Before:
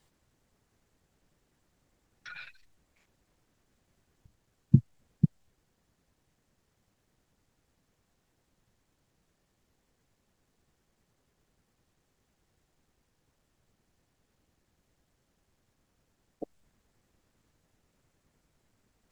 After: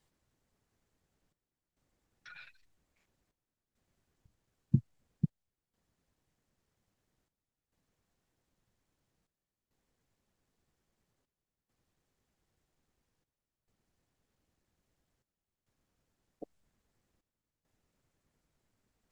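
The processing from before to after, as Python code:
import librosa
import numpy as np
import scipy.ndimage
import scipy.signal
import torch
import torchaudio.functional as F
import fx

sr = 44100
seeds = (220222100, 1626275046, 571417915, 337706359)

y = fx.step_gate(x, sr, bpm=68, pattern='xxxxxx..x', floor_db=-12.0, edge_ms=4.5)
y = y * 10.0 ** (-7.0 / 20.0)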